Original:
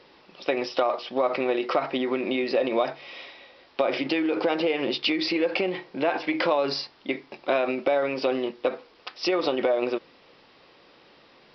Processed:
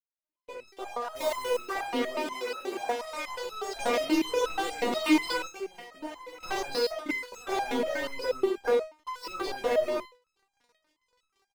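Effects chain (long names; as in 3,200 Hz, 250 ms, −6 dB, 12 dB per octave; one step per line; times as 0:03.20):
fade in at the beginning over 3.55 s
high-shelf EQ 2,800 Hz −8.5 dB
0:01.11–0:01.51: bit-depth reduction 6 bits, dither none
hollow resonant body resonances 980/2,100 Hz, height 11 dB, ringing for 25 ms
on a send: ambience of single reflections 37 ms −7.5 dB, 62 ms −9.5 dB, 73 ms −8.5 dB
on the sum: leveller curve on the samples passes 5
0:02.16–0:03.16: high-pass filter 190 Hz 12 dB per octave
auto-filter notch saw up 6.9 Hz 760–4,400 Hz
delay with pitch and tempo change per echo 431 ms, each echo +5 semitones, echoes 3, each echo −6 dB
0:05.47–0:06.43: downward compressor 6 to 1, threshold −24 dBFS, peak gain reduction 15.5 dB
step-sequenced resonator 8.3 Hz 240–1,300 Hz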